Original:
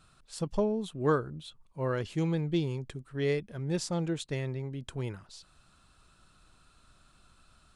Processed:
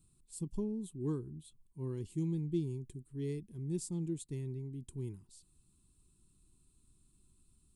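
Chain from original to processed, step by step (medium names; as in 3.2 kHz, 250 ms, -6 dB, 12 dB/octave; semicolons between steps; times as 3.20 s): FFT filter 380 Hz 0 dB, 570 Hz -27 dB, 990 Hz -13 dB, 1.4 kHz -28 dB, 2.1 kHz -16 dB, 5.8 kHz -9 dB, 8.3 kHz +5 dB; trim -5 dB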